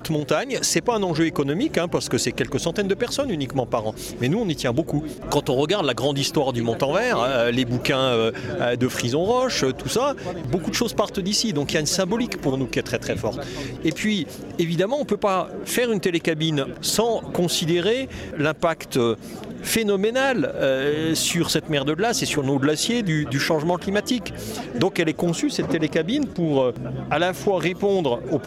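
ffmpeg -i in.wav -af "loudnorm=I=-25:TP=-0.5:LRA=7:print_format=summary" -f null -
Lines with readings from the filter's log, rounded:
Input Integrated:    -22.6 LUFS
Input True Peak:      -6.8 dBTP
Input LRA:             2.2 LU
Input Threshold:     -32.6 LUFS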